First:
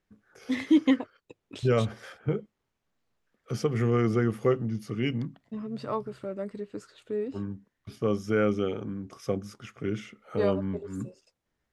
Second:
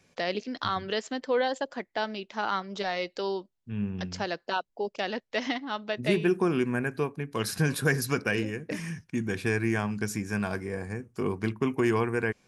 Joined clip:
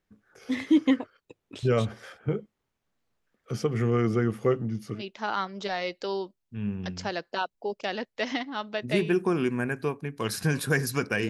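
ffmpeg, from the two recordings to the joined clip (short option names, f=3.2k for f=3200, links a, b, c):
-filter_complex "[0:a]apad=whole_dur=11.29,atrim=end=11.29,atrim=end=5.03,asetpts=PTS-STARTPTS[a];[1:a]atrim=start=2.08:end=8.44,asetpts=PTS-STARTPTS[b];[a][b]acrossfade=d=0.1:c1=tri:c2=tri"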